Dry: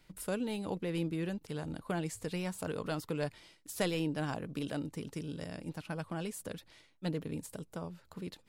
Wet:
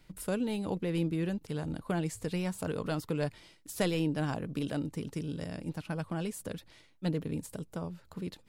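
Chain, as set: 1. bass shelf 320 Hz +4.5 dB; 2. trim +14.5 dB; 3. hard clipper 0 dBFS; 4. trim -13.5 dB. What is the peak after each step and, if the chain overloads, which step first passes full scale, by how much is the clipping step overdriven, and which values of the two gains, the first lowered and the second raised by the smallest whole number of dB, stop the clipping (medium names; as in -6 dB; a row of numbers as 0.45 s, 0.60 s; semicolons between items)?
-17.0 dBFS, -2.5 dBFS, -2.5 dBFS, -16.0 dBFS; nothing clips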